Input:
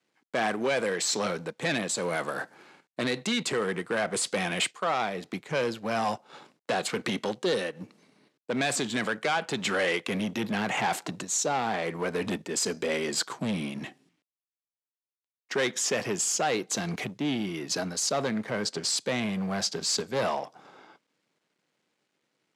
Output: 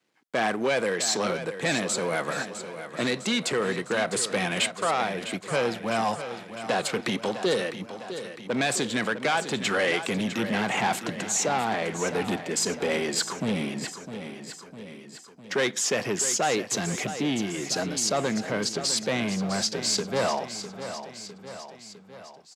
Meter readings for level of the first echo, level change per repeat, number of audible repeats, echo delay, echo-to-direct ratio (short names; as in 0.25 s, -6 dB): -11.0 dB, -4.5 dB, 4, 0.655 s, -9.5 dB